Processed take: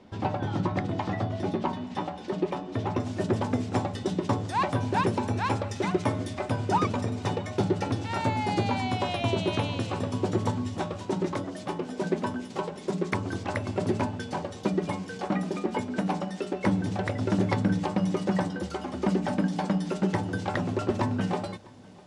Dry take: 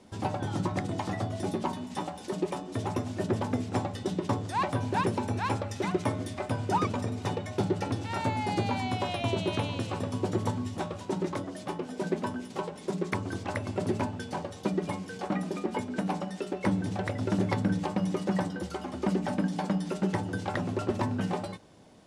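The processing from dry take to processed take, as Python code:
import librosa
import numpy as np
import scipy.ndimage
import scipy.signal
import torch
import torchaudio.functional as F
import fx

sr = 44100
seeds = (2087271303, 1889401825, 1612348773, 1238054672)

y = fx.lowpass(x, sr, hz=fx.steps((0.0, 3900.0), (3.0, 8800.0)), slope=12)
y = y + 10.0 ** (-24.0 / 20.0) * np.pad(y, (int(651 * sr / 1000.0), 0))[:len(y)]
y = F.gain(torch.from_numpy(y), 2.5).numpy()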